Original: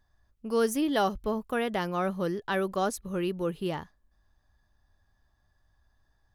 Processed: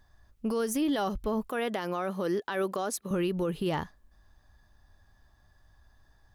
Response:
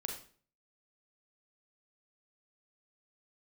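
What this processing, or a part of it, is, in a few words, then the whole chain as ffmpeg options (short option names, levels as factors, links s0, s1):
stacked limiters: -filter_complex "[0:a]asettb=1/sr,asplit=3[s0][s1][s2];[s0]atrim=end=1.494[s3];[s1]atrim=start=1.49:end=3.11,asetpts=PTS-STARTPTS,afade=t=in:d=0.004:c=qsin,afade=t=out:st=1.616:d=0.004:c=qsin,highpass=240[s4];[s2]atrim=start=3.106[s5];[s3][s4]acrossfade=d=0.004:c1=hsin:c2=qsin[s6];[s6][s5]acrossfade=d=0.004:c1=qsin:c2=hsin,alimiter=limit=0.0891:level=0:latency=1:release=369,alimiter=level_in=1.12:limit=0.0631:level=0:latency=1:release=92,volume=0.891,alimiter=level_in=1.78:limit=0.0631:level=0:latency=1:release=43,volume=0.562,volume=2.37"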